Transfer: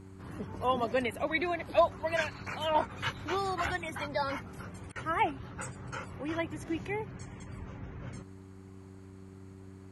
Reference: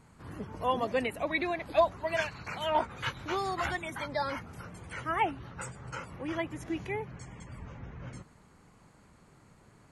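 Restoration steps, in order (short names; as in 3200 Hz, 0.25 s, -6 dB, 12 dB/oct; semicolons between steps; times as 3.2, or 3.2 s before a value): de-hum 95.5 Hz, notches 4; interpolate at 4.92, 35 ms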